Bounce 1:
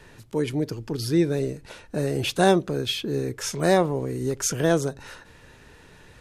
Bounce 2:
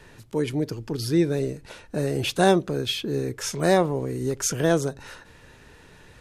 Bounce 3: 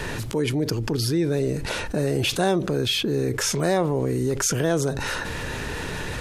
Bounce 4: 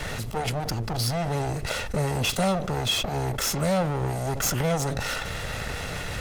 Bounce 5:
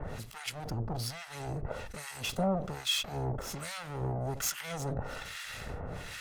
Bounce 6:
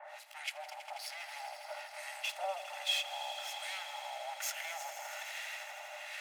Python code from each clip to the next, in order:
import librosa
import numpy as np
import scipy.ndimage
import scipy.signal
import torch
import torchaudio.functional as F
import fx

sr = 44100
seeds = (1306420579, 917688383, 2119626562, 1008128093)

y1 = x
y2 = fx.env_flatten(y1, sr, amount_pct=70)
y2 = F.gain(torch.from_numpy(y2), -4.5).numpy()
y3 = fx.lower_of_two(y2, sr, delay_ms=1.5)
y4 = fx.harmonic_tremolo(y3, sr, hz=1.2, depth_pct=100, crossover_hz=1200.0)
y4 = F.gain(torch.from_numpy(y4), -4.5).numpy()
y5 = scipy.signal.sosfilt(scipy.signal.cheby1(6, 9, 580.0, 'highpass', fs=sr, output='sos'), y4)
y5 = fx.echo_swell(y5, sr, ms=81, loudest=5, wet_db=-14.5)
y5 = F.gain(torch.from_numpy(y5), 2.0).numpy()